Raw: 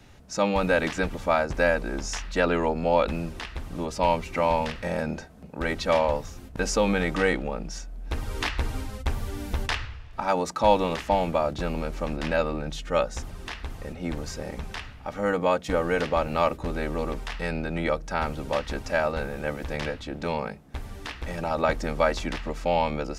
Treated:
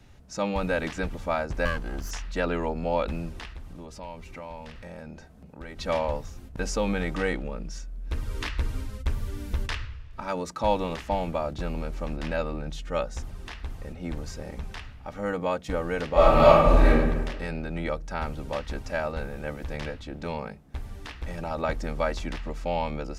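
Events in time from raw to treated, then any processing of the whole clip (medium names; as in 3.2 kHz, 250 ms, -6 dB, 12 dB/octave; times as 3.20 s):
1.65–2.11 s: comb filter that takes the minimum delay 0.66 ms
3.53–5.79 s: compression 2:1, threshold -41 dBFS
7.45–10.57 s: peaking EQ 770 Hz -9.5 dB 0.28 oct
16.12–16.89 s: reverb throw, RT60 1.3 s, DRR -12 dB
whole clip: bass shelf 140 Hz +6.5 dB; trim -5 dB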